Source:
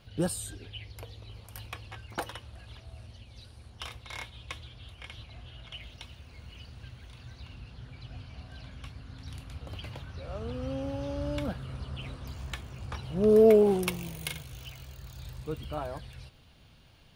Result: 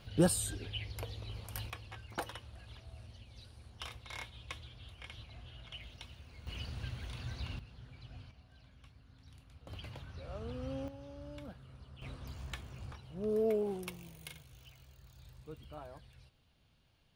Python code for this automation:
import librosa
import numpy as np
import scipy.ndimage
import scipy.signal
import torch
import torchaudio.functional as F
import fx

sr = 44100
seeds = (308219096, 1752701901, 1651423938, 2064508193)

y = fx.gain(x, sr, db=fx.steps((0.0, 2.0), (1.7, -4.5), (6.47, 4.5), (7.59, -7.0), (8.31, -15.0), (9.67, -6.0), (10.88, -15.0), (12.02, -5.5), (12.92, -13.0)))